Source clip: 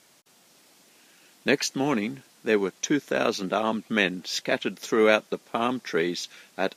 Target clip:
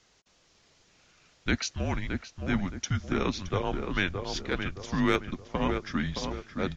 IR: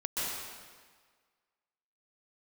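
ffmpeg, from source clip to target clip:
-filter_complex "[0:a]aresample=16000,aresample=44100,asettb=1/sr,asplit=3[a][b][c];[a]atrim=end=4.114[d];[b]atrim=start=4.11:end=5.35,asetpts=PTS-STARTPTS,afade=t=in:d=0.004:c=qsin,afade=t=out:st=1.236:d=0.004:c=qsin,aeval=exprs='0.668*(cos(1*acos(clip(val(0)/0.668,-1,1)))-cos(1*PI/2))+0.0188*(cos(7*acos(clip(val(0)/0.668,-1,1)))-cos(7*PI/2))+0.00422*(cos(8*acos(clip(val(0)/0.668,-1,1)))-cos(8*PI/2))':c=same[e];[c]atrim=start=5.346[f];[d][e]acrossfade=d=0.004:c1=hsin:c2=qsin[g];[g][f]acrossfade=d=0.004:c1=qsin:c2=hsin,asplit=2[h][i];[i]adelay=619,lowpass=f=1.5k:p=1,volume=-4.5dB,asplit=2[j][k];[k]adelay=619,lowpass=f=1.5k:p=1,volume=0.43,asplit=2[l][m];[m]adelay=619,lowpass=f=1.5k:p=1,volume=0.43,asplit=2[n][o];[o]adelay=619,lowpass=f=1.5k:p=1,volume=0.43,asplit=2[p][q];[q]adelay=619,lowpass=f=1.5k:p=1,volume=0.43[r];[j][l][n][p][r]amix=inputs=5:normalize=0[s];[h][s]amix=inputs=2:normalize=0,afreqshift=-190,volume=-5dB"

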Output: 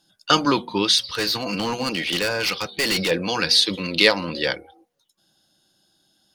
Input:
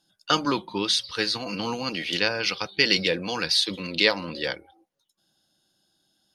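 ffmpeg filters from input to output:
-filter_complex "[0:a]acontrast=41,asettb=1/sr,asplit=3[a][b][c];[a]atrim=end=0.984[d];[b]atrim=start=0.98:end=3.11,asetpts=PTS-STARTPTS,afade=t=in:d=0.004:c=qsin,afade=t=out:st=2.126:d=0.004:c=qsin,volume=18.5dB,asoftclip=hard,volume=-18.5dB[e];[c]atrim=start=3.106[f];[d][e]acrossfade=d=0.004:c1=hsin:c2=qsin[g];[g][f]acrossfade=d=0.004:c1=qsin:c2=hsin,bandreject=f=240.1:t=h:w=4,bandreject=f=480.2:t=h:w=4,bandreject=f=720.3:t=h:w=4"

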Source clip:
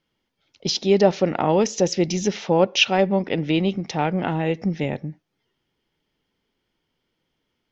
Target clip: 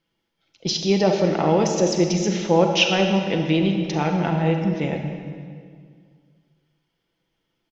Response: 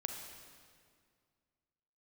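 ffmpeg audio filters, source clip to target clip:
-filter_complex "[0:a]aecho=1:1:6:0.37[a];[1:a]atrim=start_sample=2205[b];[a][b]afir=irnorm=-1:irlink=0"

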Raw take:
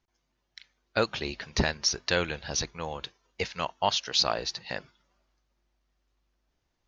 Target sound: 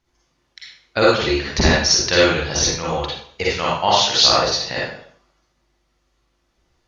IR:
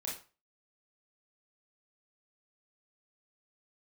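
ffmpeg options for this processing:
-filter_complex "[1:a]atrim=start_sample=2205,afade=t=out:st=0.28:d=0.01,atrim=end_sample=12789,asetrate=24696,aresample=44100[a];[0:a][a]afir=irnorm=-1:irlink=0,volume=7.5dB"

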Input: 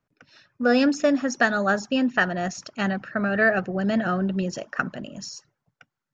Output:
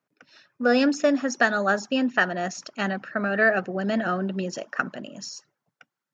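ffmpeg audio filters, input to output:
-af "highpass=210"

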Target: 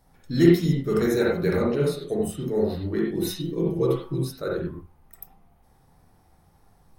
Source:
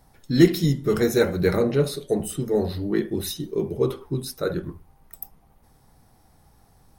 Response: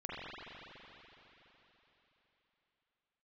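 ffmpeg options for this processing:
-filter_complex "[0:a]asettb=1/sr,asplit=3[a][b][c];[a]atrim=end=3.154[d];[b]atrim=start=3.15:end=4.23,asetpts=PTS-STARTPTS,afade=t=in:d=0.004:c=qsin,afade=t=out:st=1.076:d=0.004:c=qsin,aecho=1:1:6.1:1,atrim=end_sample=47628[e];[c]atrim=start=4.226[f];[d][e]acrossfade=d=0.004:c1=hsin:c2=qsin[g];[g][f]acrossfade=d=0.004:c1=qsin:c2=hsin[h];[1:a]atrim=start_sample=2205,atrim=end_sample=4410[i];[h][i]afir=irnorm=-1:irlink=0"

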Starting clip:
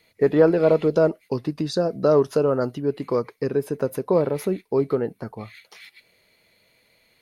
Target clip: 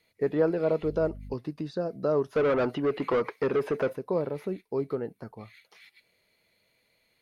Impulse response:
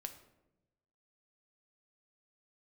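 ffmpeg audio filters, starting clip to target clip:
-filter_complex "[0:a]asettb=1/sr,asplit=3[a][b][c];[a]atrim=end=0.834[d];[b]atrim=start=0.83:end=1.34,asetpts=PTS-STARTPTS,afade=t=in:d=0.004:c=qsin,afade=t=out:st=0.506:d=0.004:c=qsin,aeval=exprs='val(0)+0.0251*(sin(2*PI*50*n/s)+sin(2*PI*2*50*n/s)/2+sin(2*PI*3*50*n/s)/3+sin(2*PI*4*50*n/s)/4+sin(2*PI*5*50*n/s)/5)':c=same[e];[c]atrim=start=1.336[f];[d][e]acrossfade=d=0.004:c1=hsin:c2=qsin[g];[g][f]acrossfade=d=0.004:c1=qsin:c2=hsin,asplit=3[h][i][j];[h]afade=t=out:st=2.35:d=0.02[k];[i]asplit=2[l][m];[m]highpass=f=720:p=1,volume=25dB,asoftclip=type=tanh:threshold=-8.5dB[n];[l][n]amix=inputs=2:normalize=0,lowpass=f=3.1k:p=1,volume=-6dB,afade=t=in:st=2.35:d=0.02,afade=t=out:st=3.92:d=0.02[o];[j]afade=t=in:st=3.92:d=0.02[p];[k][o][p]amix=inputs=3:normalize=0,acrossover=split=3500[q][r];[r]acompressor=threshold=-50dB:ratio=4:attack=1:release=60[s];[q][s]amix=inputs=2:normalize=0,volume=-8.5dB"

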